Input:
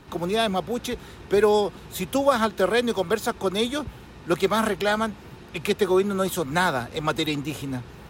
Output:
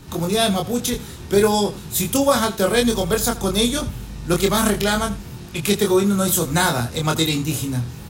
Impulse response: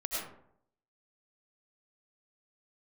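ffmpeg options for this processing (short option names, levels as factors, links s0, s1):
-filter_complex "[0:a]asettb=1/sr,asplit=3[s0][s1][s2];[s0]atrim=end=2.744[s3];[s1]atrim=start=2.74:end=5.2,asetpts=PTS-STARTPTS,afade=t=in:d=0.004:c=qsin,afade=t=out:st=2.456:d=0.004:c=qsin,aeval=exprs='val(0)+0.00794*(sin(2*PI*50*n/s)+sin(2*PI*2*50*n/s)/2+sin(2*PI*3*50*n/s)/3+sin(2*PI*4*50*n/s)/4+sin(2*PI*5*50*n/s)/5)':c=same[s4];[s2]atrim=start=5.196[s5];[s3][s4]acrossfade=d=0.004:c1=hsin:c2=qsin[s6];[s6][s5]acrossfade=d=0.004:c1=qsin:c2=hsin,bass=f=250:g=9,treble=f=4000:g=13,asplit=2[s7][s8];[s8]adelay=25,volume=0.668[s9];[s7][s9]amix=inputs=2:normalize=0,aecho=1:1:82:0.141"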